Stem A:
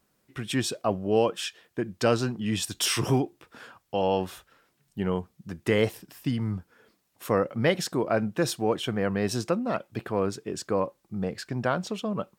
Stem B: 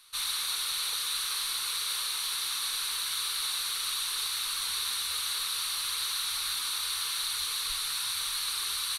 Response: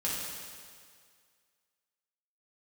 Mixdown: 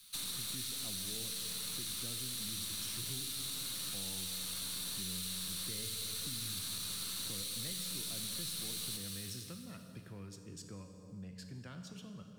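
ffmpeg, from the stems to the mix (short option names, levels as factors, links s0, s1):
-filter_complex "[0:a]lowshelf=f=400:g=11,volume=0.188,asplit=2[s0][s1];[s1]volume=0.376[s2];[1:a]aeval=exprs='0.119*(cos(1*acos(clip(val(0)/0.119,-1,1)))-cos(1*PI/2))+0.0422*(cos(2*acos(clip(val(0)/0.119,-1,1)))-cos(2*PI/2))+0.0422*(cos(4*acos(clip(val(0)/0.119,-1,1)))-cos(4*PI/2))':c=same,acrusher=bits=9:mix=0:aa=0.000001,volume=0.631,asplit=2[s3][s4];[s4]volume=0.596[s5];[2:a]atrim=start_sample=2205[s6];[s2][s5]amix=inputs=2:normalize=0[s7];[s7][s6]afir=irnorm=-1:irlink=0[s8];[s0][s3][s8]amix=inputs=3:normalize=0,equalizer=f=730:t=o:w=2.8:g=-14,acrossover=split=88|310|1300|3500[s9][s10][s11][s12][s13];[s9]acompressor=threshold=0.00158:ratio=4[s14];[s10]acompressor=threshold=0.00224:ratio=4[s15];[s11]acompressor=threshold=0.00141:ratio=4[s16];[s12]acompressor=threshold=0.00251:ratio=4[s17];[s13]acompressor=threshold=0.00891:ratio=4[s18];[s14][s15][s16][s17][s18]amix=inputs=5:normalize=0"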